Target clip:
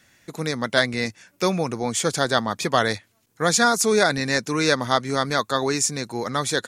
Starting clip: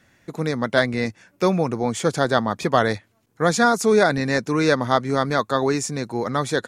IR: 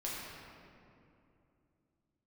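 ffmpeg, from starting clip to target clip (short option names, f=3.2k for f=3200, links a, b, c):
-af "highshelf=f=2.2k:g=11,volume=-3.5dB"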